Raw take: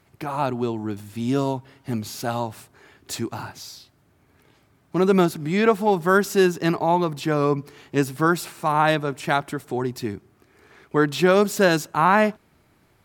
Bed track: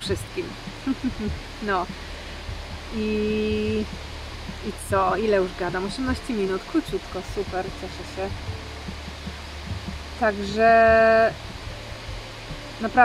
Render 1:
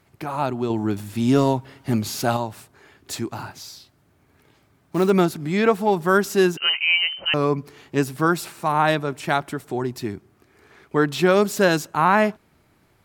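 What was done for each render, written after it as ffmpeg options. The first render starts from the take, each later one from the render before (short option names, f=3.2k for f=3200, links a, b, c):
-filter_complex "[0:a]asettb=1/sr,asplit=3[a][b][c];[a]atrim=end=0.704[d];[b]atrim=start=0.7:end=2.37,asetpts=PTS-STARTPTS,afade=t=in:d=0.004:c=qsin,afade=t=out:st=1.666:d=0.004:c=qsin,acontrast=33[e];[c]atrim=start=2.366[f];[d][e]acrossfade=d=0.004:c1=hsin:c2=qsin[g];[g][f]acrossfade=d=0.004:c1=qsin:c2=hsin,asplit=3[h][i][j];[h]afade=t=out:st=3.5:d=0.02[k];[i]acrusher=bits=6:mode=log:mix=0:aa=0.000001,afade=t=in:st=3.5:d=0.02,afade=t=out:st=5.09:d=0.02[l];[j]afade=t=in:st=5.09:d=0.02[m];[k][l][m]amix=inputs=3:normalize=0,asettb=1/sr,asplit=3[n][o][p];[n]atrim=end=6.574[q];[o]atrim=start=6.57:end=7.34,asetpts=PTS-STARTPTS,afade=t=in:d=0.004:c=qsin,afade=t=out:st=0.766:d=0.004:c=qsin,lowpass=f=2.7k:t=q:w=0.5098,lowpass=f=2.7k:t=q:w=0.6013,lowpass=f=2.7k:t=q:w=0.9,lowpass=f=2.7k:t=q:w=2.563,afreqshift=-3200[r];[p]atrim=start=7.336[s];[q][r]acrossfade=d=0.004:c1=hsin:c2=qsin[t];[t][s]acrossfade=d=0.004:c1=qsin:c2=hsin"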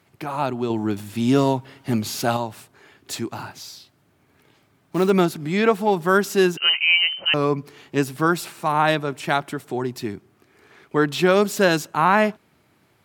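-af "highpass=100,equalizer=f=3k:w=1.5:g=2.5"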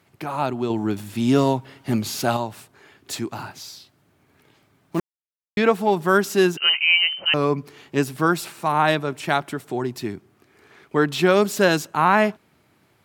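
-filter_complex "[0:a]asplit=3[a][b][c];[a]atrim=end=5,asetpts=PTS-STARTPTS,afade=t=out:st=4.996:d=0.004:c=hsin[d];[b]atrim=start=5:end=5.57,asetpts=PTS-STARTPTS,volume=0[e];[c]atrim=start=5.57,asetpts=PTS-STARTPTS,afade=t=in:d=0.004:c=hsin[f];[d][e][f]concat=n=3:v=0:a=1"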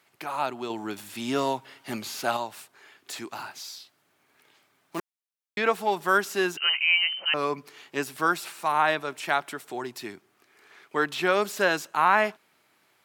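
-filter_complex "[0:a]highpass=f=990:p=1,acrossover=split=2600[a][b];[b]acompressor=threshold=-34dB:ratio=4:attack=1:release=60[c];[a][c]amix=inputs=2:normalize=0"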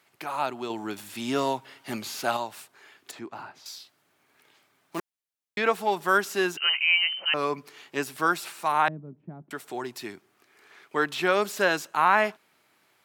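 -filter_complex "[0:a]asettb=1/sr,asplit=3[a][b][c];[a]atrim=end=3.114[d];[b]atrim=start=3.11:end=3.66,asetpts=PTS-STARTPTS,afade=t=in:d=0.004:c=qsin,afade=t=out:st=0.546:d=0.004:c=qsin,lowpass=f=1.1k:p=1[e];[c]atrim=start=3.656[f];[d][e]acrossfade=d=0.004:c1=hsin:c2=qsin[g];[g][f]acrossfade=d=0.004:c1=qsin:c2=hsin,asettb=1/sr,asplit=3[h][i][j];[h]atrim=end=8.884[k];[i]atrim=start=8.88:end=9.51,asetpts=PTS-STARTPTS,afade=t=in:d=0.004:c=qsin,afade=t=out:st=0.626:d=0.004:c=qsin,lowpass=f=190:t=q:w=2.2[l];[j]atrim=start=9.506[m];[k][l]acrossfade=d=0.004:c1=hsin:c2=qsin[n];[n][m]acrossfade=d=0.004:c1=qsin:c2=hsin"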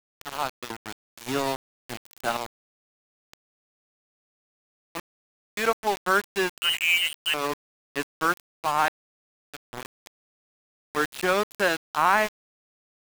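-af "aeval=exprs='val(0)*gte(abs(val(0)),0.0473)':c=same"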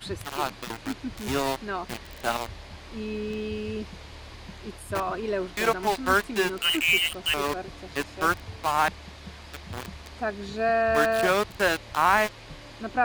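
-filter_complex "[1:a]volume=-8dB[a];[0:a][a]amix=inputs=2:normalize=0"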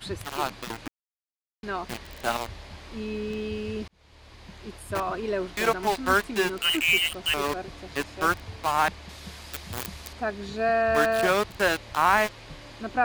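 -filter_complex "[0:a]asettb=1/sr,asplit=3[a][b][c];[a]atrim=end=9.094[d];[b]atrim=start=9.09:end=10.13,asetpts=PTS-STARTPTS,afade=t=in:d=0.004:c=qsin,afade=t=out:st=1.036:d=0.004:c=qsin,aemphasis=mode=production:type=50kf[e];[c]atrim=start=10.126[f];[d][e]acrossfade=d=0.004:c1=hsin:c2=qsin[g];[g][f]acrossfade=d=0.004:c1=qsin:c2=hsin,asplit=4[h][i][j][k];[h]atrim=end=0.88,asetpts=PTS-STARTPTS,afade=t=out:st=0.876:d=0.004:c=hsin[l];[i]atrim=start=0.88:end=1.63,asetpts=PTS-STARTPTS,volume=0[m];[j]atrim=start=1.63:end=3.88,asetpts=PTS-STARTPTS,afade=t=in:d=0.004:c=hsin,afade=t=out:st=2.246:d=0.004:c=hsin[n];[k]atrim=start=3.88,asetpts=PTS-STARTPTS,afade=t=in:d=1.29:c=qsin[o];[l][m][n][o]concat=n=4:v=0:a=1"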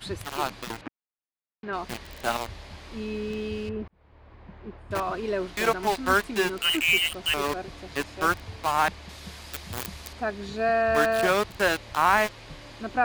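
-filter_complex "[0:a]asettb=1/sr,asplit=3[a][b][c];[a]atrim=end=0.814[d];[b]atrim=start=0.81:end=1.73,asetpts=PTS-STARTPTS,afade=t=in:d=0.004:c=qsin,afade=t=out:st=0.916:d=0.004:c=qsin,highpass=120,lowpass=2.3k[e];[c]atrim=start=1.726[f];[d][e]acrossfade=d=0.004:c1=hsin:c2=qsin[g];[g][f]acrossfade=d=0.004:c1=qsin:c2=hsin,asettb=1/sr,asplit=3[h][i][j];[h]atrim=end=3.694[k];[i]atrim=start=3.69:end=4.91,asetpts=PTS-STARTPTS,afade=t=in:d=0.004:c=qsin,afade=t=out:st=1.216:d=0.004:c=qsin,lowpass=1.5k[l];[j]atrim=start=4.906[m];[k][l]acrossfade=d=0.004:c1=hsin:c2=qsin[n];[n][m]acrossfade=d=0.004:c1=qsin:c2=hsin"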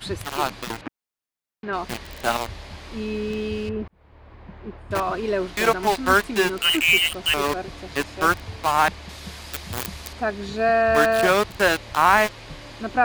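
-af "volume=4.5dB"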